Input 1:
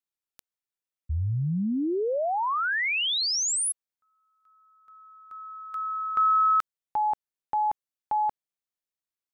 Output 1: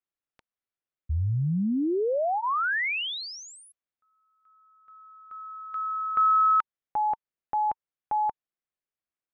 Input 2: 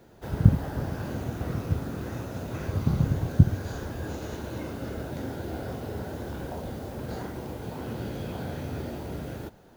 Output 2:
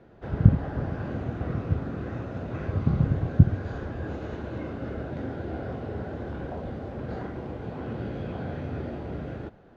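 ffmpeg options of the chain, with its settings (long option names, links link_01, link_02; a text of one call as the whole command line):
ffmpeg -i in.wav -af "lowpass=2400,bandreject=frequency=910:width=12,volume=1dB" out.wav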